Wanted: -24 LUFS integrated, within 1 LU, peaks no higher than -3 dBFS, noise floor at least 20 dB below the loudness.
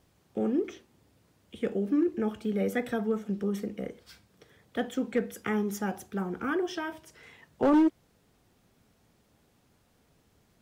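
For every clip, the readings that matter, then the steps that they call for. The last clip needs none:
clipped 0.5%; flat tops at -18.5 dBFS; loudness -30.5 LUFS; peak -18.5 dBFS; loudness target -24.0 LUFS
-> clip repair -18.5 dBFS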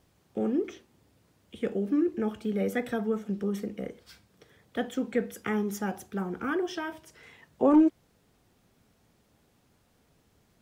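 clipped 0.0%; loudness -30.0 LUFS; peak -12.0 dBFS; loudness target -24.0 LUFS
-> gain +6 dB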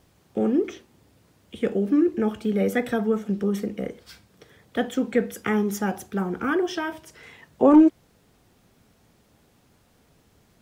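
loudness -24.0 LUFS; peak -6.0 dBFS; noise floor -62 dBFS

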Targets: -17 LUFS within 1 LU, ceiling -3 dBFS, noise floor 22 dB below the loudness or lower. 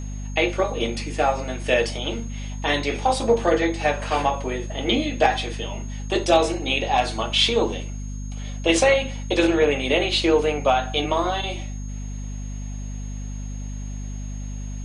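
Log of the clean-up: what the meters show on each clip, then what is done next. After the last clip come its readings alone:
hum 50 Hz; harmonics up to 250 Hz; hum level -28 dBFS; steady tone 6500 Hz; tone level -45 dBFS; loudness -22.0 LUFS; peak -4.5 dBFS; loudness target -17.0 LUFS
-> de-hum 50 Hz, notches 5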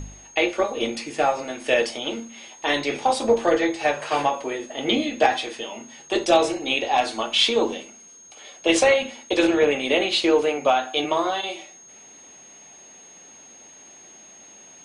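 hum none; steady tone 6500 Hz; tone level -45 dBFS
-> notch 6500 Hz, Q 30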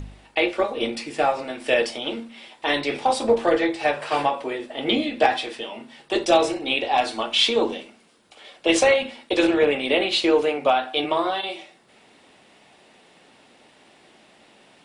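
steady tone none; loudness -22.0 LUFS; peak -5.0 dBFS; loudness target -17.0 LUFS
-> gain +5 dB; limiter -3 dBFS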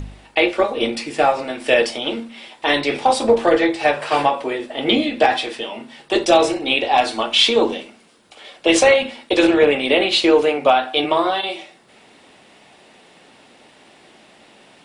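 loudness -17.5 LUFS; peak -3.0 dBFS; noise floor -50 dBFS

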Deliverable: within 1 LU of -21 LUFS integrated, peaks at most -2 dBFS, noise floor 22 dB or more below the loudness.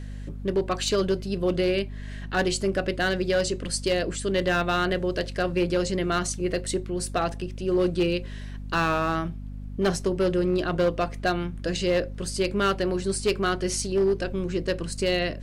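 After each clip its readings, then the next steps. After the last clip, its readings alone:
clipped 1.0%; flat tops at -17.0 dBFS; hum 50 Hz; harmonics up to 250 Hz; hum level -34 dBFS; loudness -26.0 LUFS; peak -17.0 dBFS; loudness target -21.0 LUFS
-> clip repair -17 dBFS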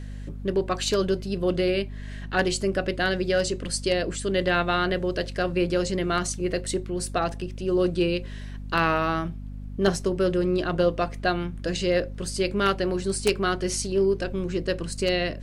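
clipped 0.0%; hum 50 Hz; harmonics up to 250 Hz; hum level -33 dBFS
-> de-hum 50 Hz, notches 5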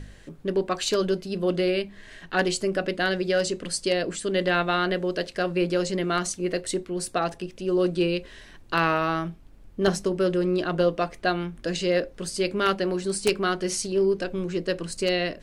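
hum none; loudness -26.0 LUFS; peak -7.5 dBFS; loudness target -21.0 LUFS
-> gain +5 dB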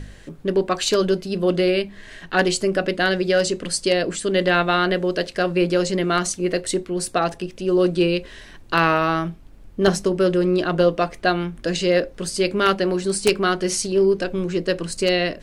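loudness -21.0 LUFS; peak -2.5 dBFS; noise floor -43 dBFS

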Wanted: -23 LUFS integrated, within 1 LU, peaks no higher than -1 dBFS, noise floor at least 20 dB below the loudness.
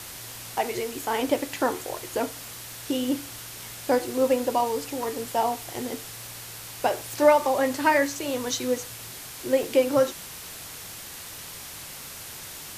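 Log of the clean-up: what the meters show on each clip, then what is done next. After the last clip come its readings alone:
dropouts 3; longest dropout 1.1 ms; noise floor -40 dBFS; noise floor target -48 dBFS; loudness -27.5 LUFS; peak -5.5 dBFS; loudness target -23.0 LUFS
-> interpolate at 0.92/5.03/9.63, 1.1 ms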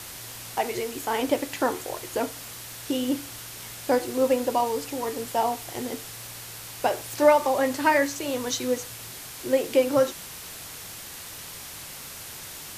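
dropouts 0; noise floor -40 dBFS; noise floor target -48 dBFS
-> denoiser 8 dB, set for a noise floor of -40 dBFS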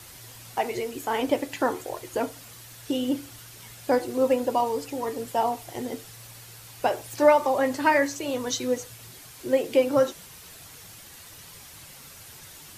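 noise floor -47 dBFS; loudness -26.0 LUFS; peak -5.5 dBFS; loudness target -23.0 LUFS
-> gain +3 dB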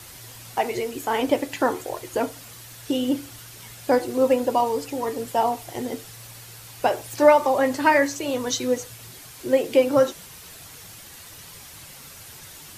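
loudness -23.0 LUFS; peak -2.5 dBFS; noise floor -44 dBFS

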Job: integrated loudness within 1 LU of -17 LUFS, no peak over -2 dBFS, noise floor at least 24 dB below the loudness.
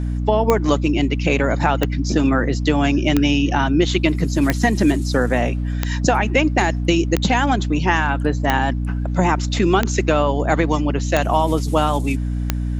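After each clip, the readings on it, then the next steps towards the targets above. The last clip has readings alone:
clicks 10; hum 60 Hz; harmonics up to 300 Hz; hum level -19 dBFS; loudness -18.5 LUFS; peak -2.5 dBFS; loudness target -17.0 LUFS
-> de-click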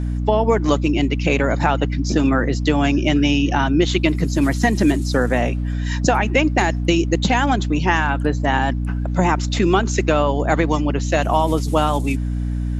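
clicks 0; hum 60 Hz; harmonics up to 300 Hz; hum level -19 dBFS
-> de-hum 60 Hz, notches 5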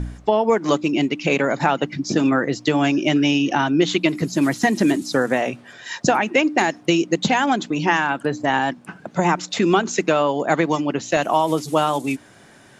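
hum none; loudness -20.0 LUFS; peak -1.0 dBFS; loudness target -17.0 LUFS
-> gain +3 dB; limiter -2 dBFS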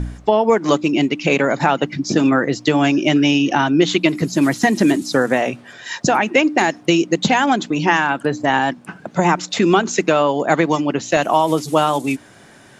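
loudness -17.0 LUFS; peak -2.0 dBFS; noise floor -45 dBFS

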